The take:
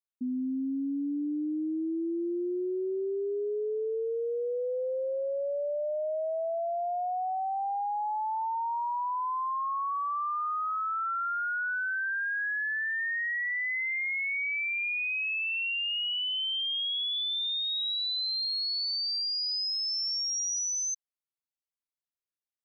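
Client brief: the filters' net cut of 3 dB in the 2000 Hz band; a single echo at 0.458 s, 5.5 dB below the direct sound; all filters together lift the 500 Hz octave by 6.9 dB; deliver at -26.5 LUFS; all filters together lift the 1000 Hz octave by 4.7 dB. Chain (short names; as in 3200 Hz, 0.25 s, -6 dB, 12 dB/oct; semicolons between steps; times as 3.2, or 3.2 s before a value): bell 500 Hz +7.5 dB; bell 1000 Hz +5 dB; bell 2000 Hz -6 dB; echo 0.458 s -5.5 dB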